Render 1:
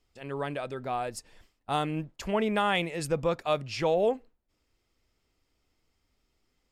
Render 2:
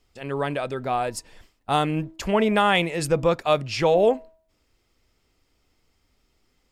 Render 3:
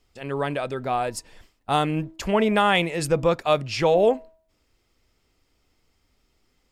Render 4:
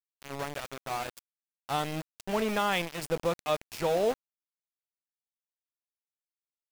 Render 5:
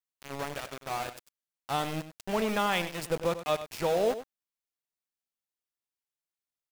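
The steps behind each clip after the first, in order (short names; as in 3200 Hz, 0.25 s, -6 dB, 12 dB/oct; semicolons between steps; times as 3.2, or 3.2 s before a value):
de-hum 321.8 Hz, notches 3; gain +7 dB
nothing audible
sample gate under -23.5 dBFS; gain -8.5 dB
echo 97 ms -12.5 dB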